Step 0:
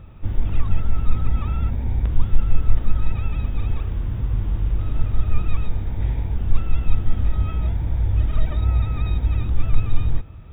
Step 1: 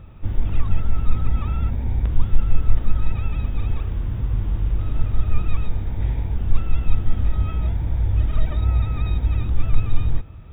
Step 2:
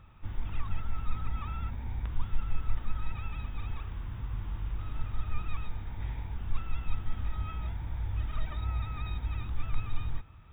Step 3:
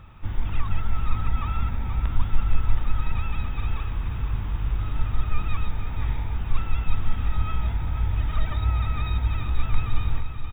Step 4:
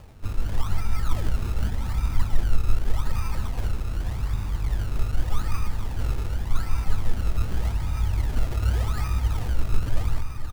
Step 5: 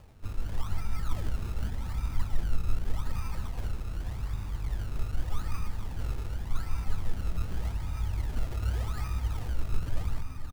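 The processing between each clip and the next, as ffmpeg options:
-af anull
-af "lowshelf=f=740:t=q:w=1.5:g=-7,volume=0.473"
-af "aecho=1:1:478|956|1434|1912|2390|2868|3346:0.355|0.199|0.111|0.0623|0.0349|0.0195|0.0109,volume=2.66"
-af "acrusher=samples=23:mix=1:aa=0.000001:lfo=1:lforange=23:lforate=0.85"
-filter_complex "[0:a]asplit=4[s0][s1][s2][s3];[s1]adelay=113,afreqshift=-90,volume=0.0794[s4];[s2]adelay=226,afreqshift=-180,volume=0.0372[s5];[s3]adelay=339,afreqshift=-270,volume=0.0176[s6];[s0][s4][s5][s6]amix=inputs=4:normalize=0,volume=0.447"

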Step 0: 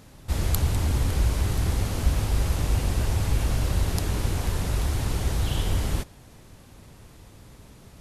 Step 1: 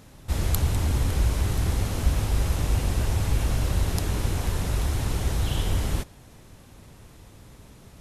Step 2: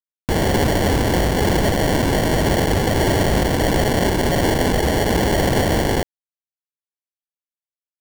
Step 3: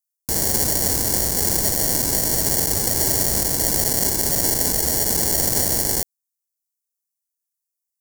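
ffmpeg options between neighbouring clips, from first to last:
-af "bandreject=f=4600:w=29"
-filter_complex "[0:a]acrusher=bits=4:mix=0:aa=0.000001,asplit=2[s0][s1];[s1]highpass=f=720:p=1,volume=35.5,asoftclip=type=tanh:threshold=0.473[s2];[s0][s2]amix=inputs=2:normalize=0,lowpass=f=4400:p=1,volume=0.501,acrusher=samples=35:mix=1:aa=0.000001"
-af "aexciter=amount=10.8:drive=5.3:freq=4700,volume=0.335"

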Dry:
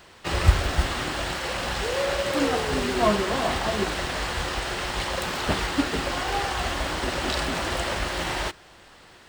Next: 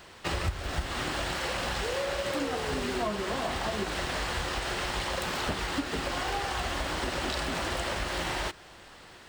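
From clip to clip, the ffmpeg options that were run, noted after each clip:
-af "acompressor=threshold=0.0398:ratio=6"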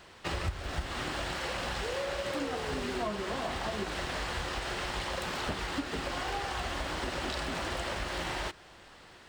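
-af "highshelf=f=9800:g=-6,volume=0.708"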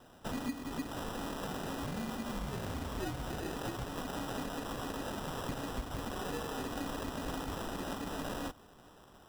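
-af "afreqshift=-330,acrusher=samples=20:mix=1:aa=0.000001,volume=0.631"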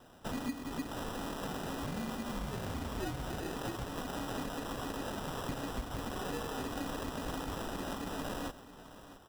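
-af "aecho=1:1:663:0.178"

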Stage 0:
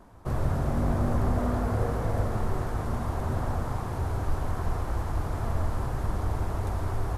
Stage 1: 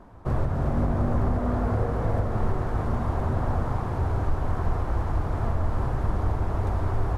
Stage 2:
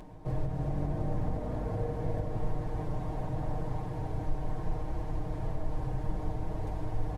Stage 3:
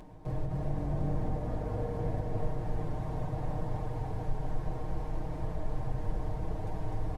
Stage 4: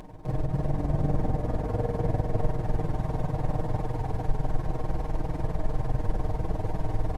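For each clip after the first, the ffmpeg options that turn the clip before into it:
-af "lowpass=f=2200:p=1,alimiter=limit=0.119:level=0:latency=1:release=259,volume=1.58"
-af "equalizer=f=1300:w=2.4:g=-13,acompressor=mode=upward:threshold=0.0251:ratio=2.5,aecho=1:1:6.5:0.83,volume=0.376"
-af "aecho=1:1:254:0.668,volume=0.794"
-af "tremolo=f=20:d=0.621,volume=2.66"

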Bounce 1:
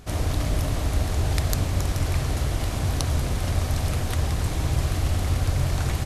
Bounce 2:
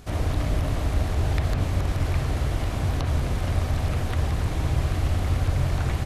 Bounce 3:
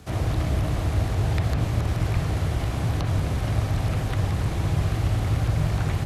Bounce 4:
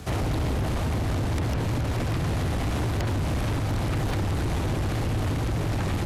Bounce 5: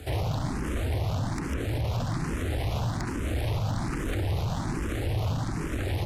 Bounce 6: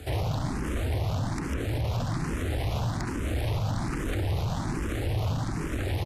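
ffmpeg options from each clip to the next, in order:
-filter_complex "[0:a]acrossover=split=3400[s0][s1];[s1]acompressor=threshold=0.00562:ratio=4:attack=1:release=60[s2];[s0][s2]amix=inputs=2:normalize=0"
-af "afreqshift=21"
-af "acompressor=threshold=0.0708:ratio=6,aeval=exprs='0.168*sin(PI/2*3.16*val(0)/0.168)':c=same,volume=0.447"
-filter_complex "[0:a]asplit=2[s0][s1];[s1]afreqshift=1.2[s2];[s0][s2]amix=inputs=2:normalize=1"
-af "aresample=32000,aresample=44100"

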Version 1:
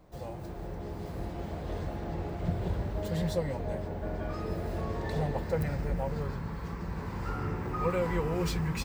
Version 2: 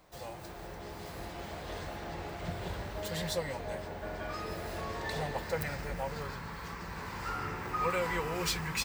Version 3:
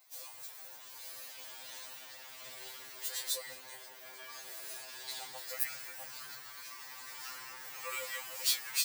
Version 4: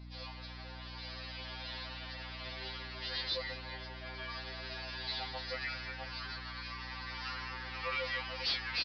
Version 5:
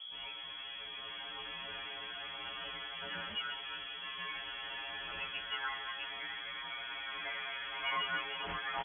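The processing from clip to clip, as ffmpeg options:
-af "tiltshelf=f=710:g=-8,volume=0.891"
-af "aderivative,afftfilt=real='re*2.45*eq(mod(b,6),0)':imag='im*2.45*eq(mod(b,6),0)':win_size=2048:overlap=0.75,volume=2.66"
-af "aeval=exprs='val(0)+0.002*(sin(2*PI*60*n/s)+sin(2*PI*2*60*n/s)/2+sin(2*PI*3*60*n/s)/3+sin(2*PI*4*60*n/s)/4+sin(2*PI*5*60*n/s)/5)':c=same,aresample=11025,asoftclip=type=tanh:threshold=0.0141,aresample=44100,volume=2.24"
-af "lowpass=f=2900:t=q:w=0.5098,lowpass=f=2900:t=q:w=0.6013,lowpass=f=2900:t=q:w=0.9,lowpass=f=2900:t=q:w=2.563,afreqshift=-3400,volume=1.19"

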